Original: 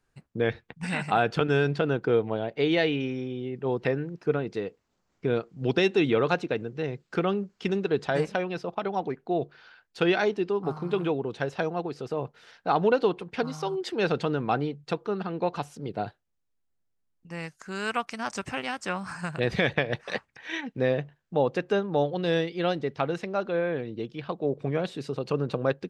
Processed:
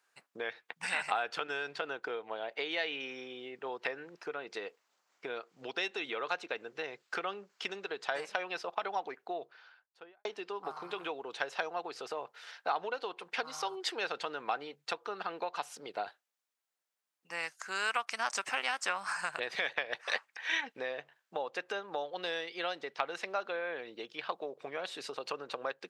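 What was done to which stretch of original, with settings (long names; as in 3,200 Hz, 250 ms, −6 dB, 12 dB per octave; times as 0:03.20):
0:09.09–0:10.25: fade out and dull
whole clip: downward compressor, threshold −30 dBFS; high-pass filter 800 Hz 12 dB per octave; level +4 dB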